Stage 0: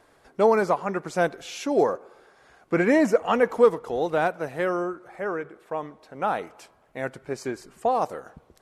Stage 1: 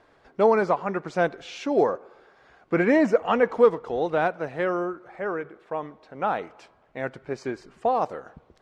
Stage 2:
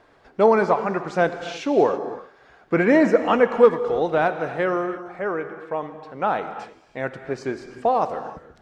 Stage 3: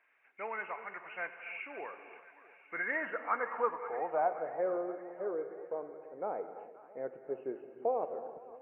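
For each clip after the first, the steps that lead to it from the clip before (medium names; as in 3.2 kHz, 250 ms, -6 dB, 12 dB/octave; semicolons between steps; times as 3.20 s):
low-pass 4.4 kHz 12 dB/octave
gated-style reverb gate 350 ms flat, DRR 9.5 dB; trim +3 dB
knee-point frequency compression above 2.1 kHz 4:1; band-pass sweep 2.1 kHz -> 470 Hz, 2.62–4.93 s; two-band feedback delay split 860 Hz, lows 333 ms, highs 525 ms, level -15 dB; trim -7.5 dB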